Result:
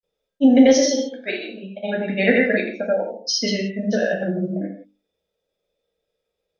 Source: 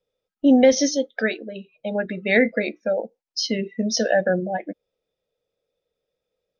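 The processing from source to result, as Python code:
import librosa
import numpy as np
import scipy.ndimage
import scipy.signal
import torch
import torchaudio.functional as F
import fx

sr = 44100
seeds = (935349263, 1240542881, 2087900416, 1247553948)

y = fx.granulator(x, sr, seeds[0], grain_ms=100.0, per_s=20.0, spray_ms=100.0, spread_st=0)
y = fx.hum_notches(y, sr, base_hz=50, count=6)
y = fx.rev_gated(y, sr, seeds[1], gate_ms=200, shape='falling', drr_db=0.5)
y = F.gain(torch.from_numpy(y), 1.5).numpy()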